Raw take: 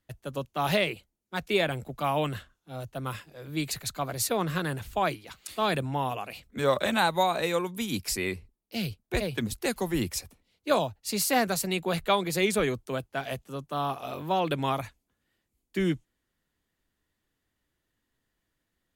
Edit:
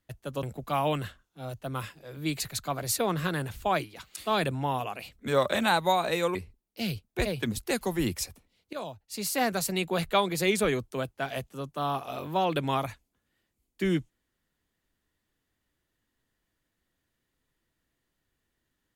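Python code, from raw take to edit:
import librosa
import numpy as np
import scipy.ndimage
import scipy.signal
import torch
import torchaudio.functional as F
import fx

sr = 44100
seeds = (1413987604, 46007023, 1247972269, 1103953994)

y = fx.edit(x, sr, fx.cut(start_s=0.43, length_s=1.31),
    fx.cut(start_s=7.66, length_s=0.64),
    fx.fade_in_from(start_s=10.68, length_s=0.99, floor_db=-15.0), tone=tone)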